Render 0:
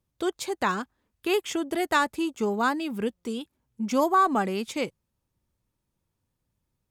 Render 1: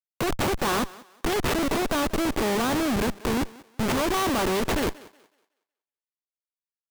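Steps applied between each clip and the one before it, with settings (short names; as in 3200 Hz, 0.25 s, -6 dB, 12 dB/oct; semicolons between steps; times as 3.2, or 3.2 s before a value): per-bin compression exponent 0.4; Schmitt trigger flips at -24.5 dBFS; thinning echo 0.185 s, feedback 30%, high-pass 270 Hz, level -19.5 dB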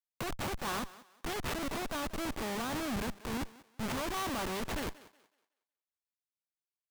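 bell 380 Hz -5 dB 1.1 oct; limiter -22 dBFS, peak gain reduction 5 dB; gain -8 dB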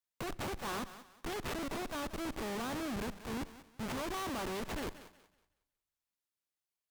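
tube stage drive 39 dB, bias 0.3; on a send at -20.5 dB: reverb RT60 0.75 s, pre-delay 40 ms; on the sum: gain +2.5 dB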